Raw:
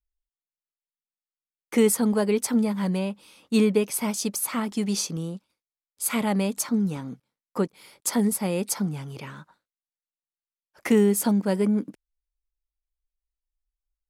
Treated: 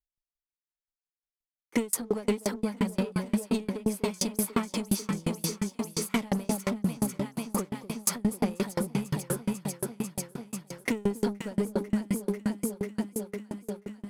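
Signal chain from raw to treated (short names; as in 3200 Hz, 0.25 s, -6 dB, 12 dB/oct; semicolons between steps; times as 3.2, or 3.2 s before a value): echo with dull and thin repeats by turns 0.247 s, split 920 Hz, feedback 82%, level -4 dB; compressor, threshold -23 dBFS, peak gain reduction 9 dB; sample leveller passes 2; dB-ramp tremolo decaying 5.7 Hz, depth 32 dB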